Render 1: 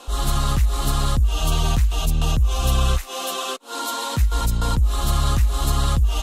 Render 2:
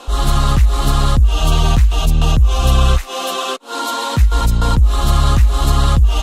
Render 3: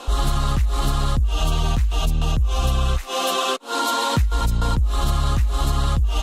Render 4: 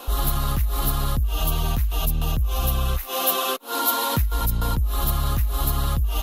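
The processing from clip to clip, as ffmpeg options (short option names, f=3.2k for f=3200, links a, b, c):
-af "highshelf=f=6.5k:g=-8.5,volume=7dB"
-af "acompressor=threshold=-16dB:ratio=6"
-af "aexciter=amount=12.5:drive=4:freq=11k,volume=-3dB"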